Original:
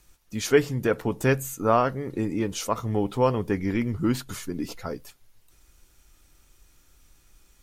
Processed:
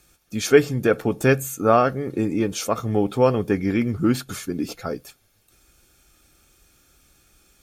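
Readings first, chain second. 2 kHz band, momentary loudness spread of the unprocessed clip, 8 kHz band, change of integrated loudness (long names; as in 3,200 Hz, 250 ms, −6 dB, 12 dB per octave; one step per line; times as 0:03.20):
+4.5 dB, 11 LU, +3.5 dB, +4.5 dB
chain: notch comb filter 970 Hz
level +5 dB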